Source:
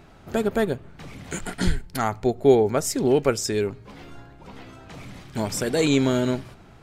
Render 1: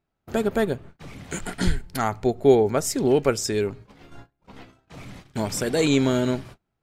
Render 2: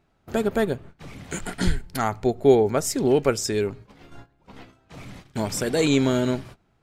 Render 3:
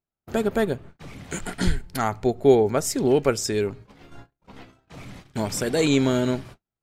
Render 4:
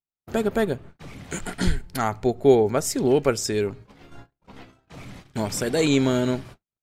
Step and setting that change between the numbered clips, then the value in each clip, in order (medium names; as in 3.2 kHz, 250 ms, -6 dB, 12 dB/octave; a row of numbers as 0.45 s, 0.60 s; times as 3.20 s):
gate, range: -30 dB, -17 dB, -43 dB, -55 dB